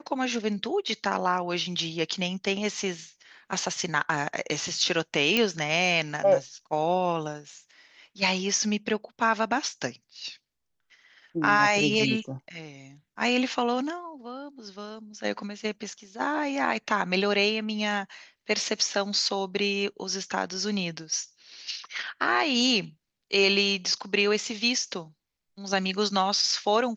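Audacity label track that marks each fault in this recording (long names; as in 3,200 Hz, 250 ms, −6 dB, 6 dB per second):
5.370000	5.370000	click −9 dBFS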